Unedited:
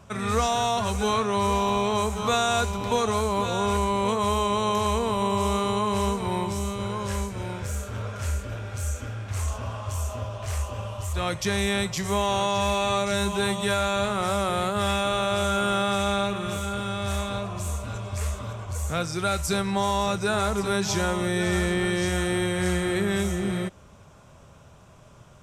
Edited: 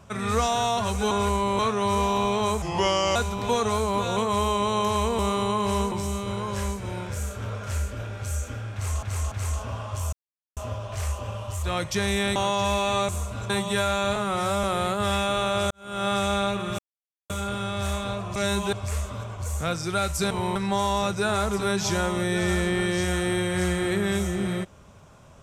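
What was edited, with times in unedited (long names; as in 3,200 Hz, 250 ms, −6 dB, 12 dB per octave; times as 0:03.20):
0:02.14–0:02.58: play speed 82%
0:03.59–0:04.07: move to 0:01.11
0:05.09–0:05.46: remove
0:06.19–0:06.44: move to 0:19.60
0:09.26–0:09.55: repeat, 3 plays
0:10.07: splice in silence 0.44 s
0:11.86–0:12.32: remove
0:13.05–0:13.42: swap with 0:17.61–0:18.02
0:14.08–0:14.40: time-stretch 1.5×
0:15.47–0:15.84: fade in quadratic
0:16.55: splice in silence 0.51 s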